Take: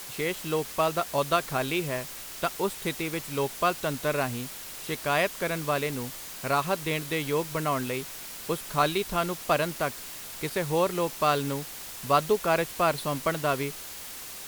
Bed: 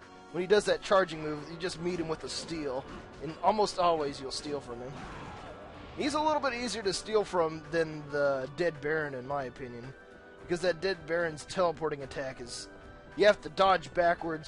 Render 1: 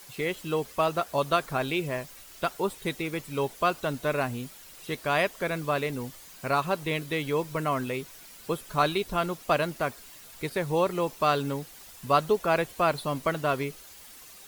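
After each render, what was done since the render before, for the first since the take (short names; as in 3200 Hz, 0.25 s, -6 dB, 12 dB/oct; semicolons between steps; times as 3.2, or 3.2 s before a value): denoiser 10 dB, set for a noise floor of -41 dBFS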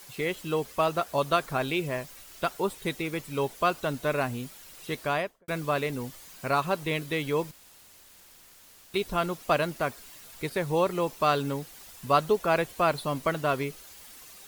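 5.02–5.48 studio fade out; 7.51–8.94 room tone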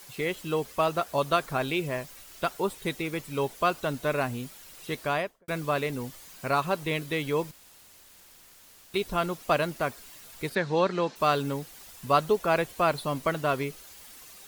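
10.55–11.16 speaker cabinet 150–6400 Hz, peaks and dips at 210 Hz +8 dB, 1600 Hz +9 dB, 4100 Hz +7 dB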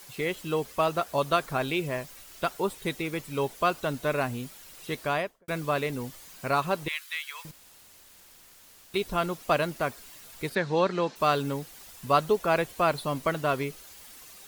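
6.88–7.45 HPF 1300 Hz 24 dB/oct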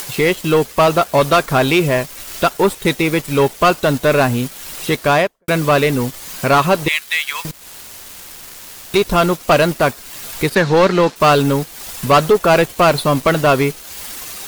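in parallel at -2 dB: upward compressor, threshold -31 dBFS; on the sum: sample leveller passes 3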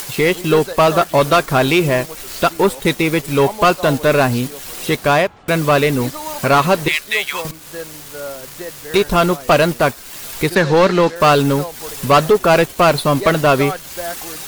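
add bed -0.5 dB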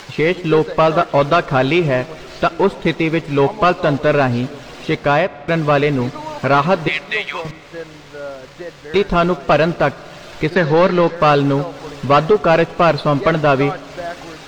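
air absorption 170 m; Schroeder reverb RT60 3.6 s, combs from 32 ms, DRR 19 dB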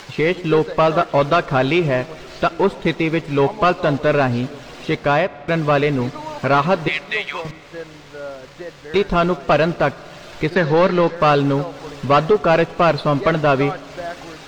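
gain -2 dB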